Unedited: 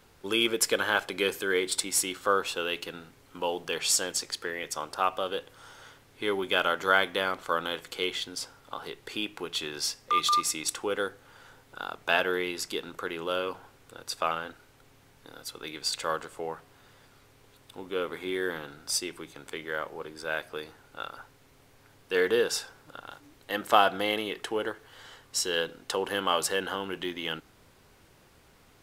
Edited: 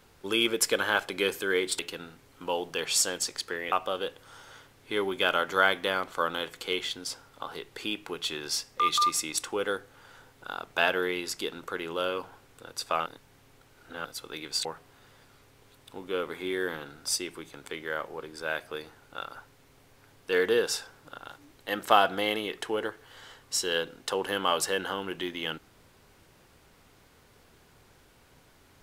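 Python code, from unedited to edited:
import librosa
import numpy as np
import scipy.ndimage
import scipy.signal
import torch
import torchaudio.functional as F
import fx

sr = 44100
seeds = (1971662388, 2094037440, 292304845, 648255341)

y = fx.edit(x, sr, fx.cut(start_s=1.79, length_s=0.94),
    fx.cut(start_s=4.66, length_s=0.37),
    fx.reverse_span(start_s=14.37, length_s=0.99),
    fx.cut(start_s=15.96, length_s=0.51), tone=tone)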